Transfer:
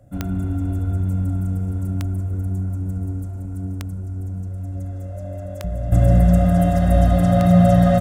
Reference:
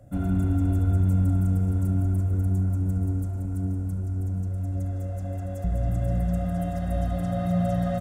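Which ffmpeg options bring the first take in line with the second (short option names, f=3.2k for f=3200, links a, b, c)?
-af "adeclick=t=4,bandreject=f=600:w=30,asetnsamples=n=441:p=0,asendcmd='5.92 volume volume -11.5dB',volume=0dB"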